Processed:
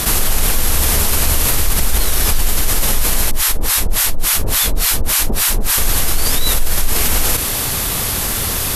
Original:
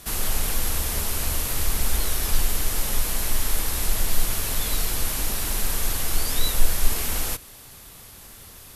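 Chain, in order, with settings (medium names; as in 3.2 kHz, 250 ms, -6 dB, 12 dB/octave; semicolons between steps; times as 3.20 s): 3.31–5.78 s: harmonic tremolo 3.5 Hz, depth 100%, crossover 810 Hz; level flattener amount 70%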